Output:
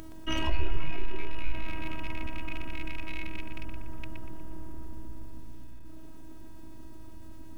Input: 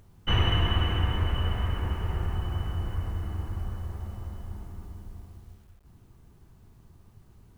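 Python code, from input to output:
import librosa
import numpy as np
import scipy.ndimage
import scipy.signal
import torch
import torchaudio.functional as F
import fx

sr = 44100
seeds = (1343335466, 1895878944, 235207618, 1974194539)

y = fx.rattle_buzz(x, sr, strikes_db=-27.0, level_db=-22.0)
y = fx.peak_eq(y, sr, hz=240.0, db=9.5, octaves=1.1)
y = fx.robotise(y, sr, hz=319.0)
y = np.maximum(y, 0.0)
y = fx.echo_filtered(y, sr, ms=120, feedback_pct=57, hz=2500.0, wet_db=-3.5)
y = fx.noise_reduce_blind(y, sr, reduce_db=15)
y = fx.env_flatten(y, sr, amount_pct=50)
y = y * 10.0 ** (1.0 / 20.0)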